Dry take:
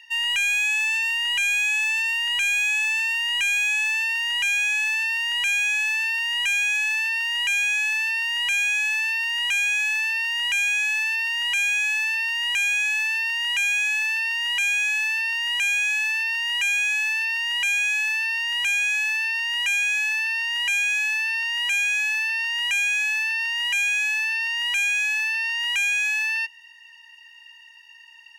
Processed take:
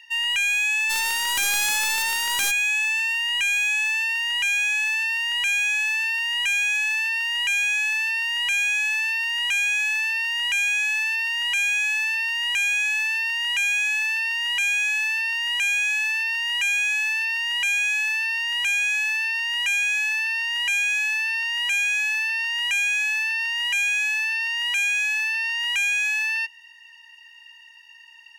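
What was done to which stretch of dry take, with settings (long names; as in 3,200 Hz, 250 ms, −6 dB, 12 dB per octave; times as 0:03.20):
0:00.89–0:02.50: spectral envelope flattened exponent 0.3
0:24.09–0:25.33: high-pass filter 250 Hz 6 dB per octave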